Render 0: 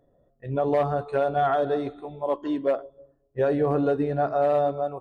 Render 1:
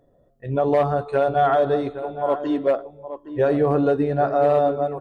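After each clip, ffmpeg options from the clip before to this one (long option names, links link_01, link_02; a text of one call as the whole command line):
ffmpeg -i in.wav -filter_complex "[0:a]asplit=2[link_01][link_02];[link_02]adelay=816.3,volume=-11dB,highshelf=frequency=4000:gain=-18.4[link_03];[link_01][link_03]amix=inputs=2:normalize=0,volume=4dB" out.wav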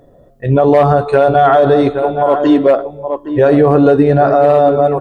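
ffmpeg -i in.wav -af "alimiter=level_in=15.5dB:limit=-1dB:release=50:level=0:latency=1,volume=-1dB" out.wav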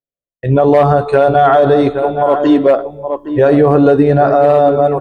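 ffmpeg -i in.wav -af "agate=range=-53dB:threshold=-33dB:ratio=16:detection=peak" out.wav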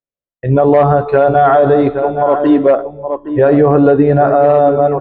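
ffmpeg -i in.wav -af "lowpass=2400" out.wav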